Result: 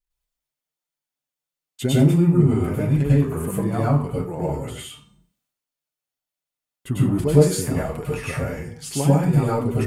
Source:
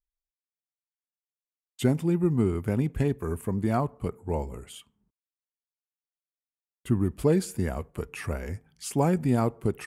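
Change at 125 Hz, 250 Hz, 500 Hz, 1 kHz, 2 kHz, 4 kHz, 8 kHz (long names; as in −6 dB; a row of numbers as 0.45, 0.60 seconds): +9.5, +6.5, +6.0, +4.0, +6.0, +9.5, +9.0 decibels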